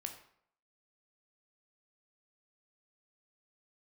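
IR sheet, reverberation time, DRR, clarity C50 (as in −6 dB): 0.65 s, 4.5 dB, 9.0 dB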